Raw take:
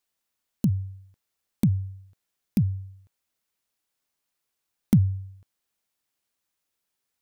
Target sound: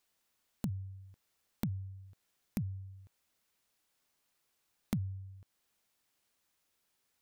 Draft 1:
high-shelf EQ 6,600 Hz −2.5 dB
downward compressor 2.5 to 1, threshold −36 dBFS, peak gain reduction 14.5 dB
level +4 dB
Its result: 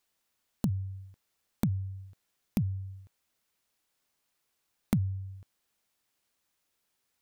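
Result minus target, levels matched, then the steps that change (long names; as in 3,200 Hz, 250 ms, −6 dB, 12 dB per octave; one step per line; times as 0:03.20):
downward compressor: peak gain reduction −7 dB
change: downward compressor 2.5 to 1, threshold −48 dBFS, peak gain reduction 21.5 dB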